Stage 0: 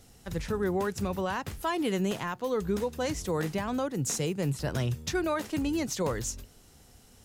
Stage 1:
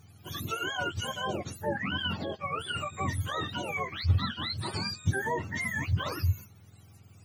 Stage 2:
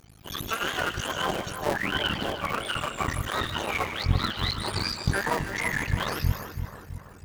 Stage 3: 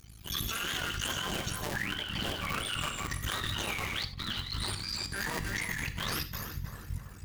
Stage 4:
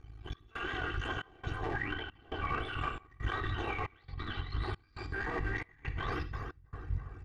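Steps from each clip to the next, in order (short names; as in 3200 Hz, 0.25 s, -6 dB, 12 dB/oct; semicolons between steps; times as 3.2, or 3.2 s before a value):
spectrum mirrored in octaves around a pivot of 760 Hz
cycle switcher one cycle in 2, muted; low shelf 190 Hz -4 dB; split-band echo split 1600 Hz, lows 0.33 s, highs 0.15 s, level -8.5 dB; gain +7 dB
bell 620 Hz -12.5 dB 2.8 oct; negative-ratio compressor -36 dBFS, ratio -1; non-linear reverb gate 0.11 s flat, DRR 9.5 dB
LPF 1600 Hz 12 dB/oct; comb 2.6 ms, depth 72%; step gate "xxx..xxx" 136 bpm -24 dB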